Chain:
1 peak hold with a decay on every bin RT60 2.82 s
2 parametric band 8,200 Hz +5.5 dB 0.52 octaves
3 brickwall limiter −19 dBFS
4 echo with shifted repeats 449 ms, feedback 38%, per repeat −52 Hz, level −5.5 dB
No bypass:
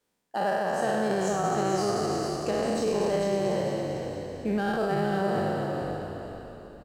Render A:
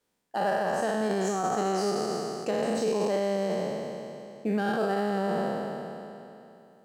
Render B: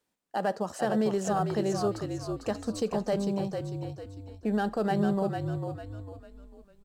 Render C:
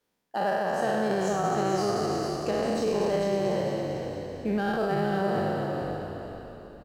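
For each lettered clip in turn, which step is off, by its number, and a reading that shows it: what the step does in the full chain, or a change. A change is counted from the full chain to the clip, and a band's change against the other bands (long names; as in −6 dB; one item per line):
4, change in momentary loudness spread +3 LU
1, 125 Hz band +5.0 dB
2, 8 kHz band −3.0 dB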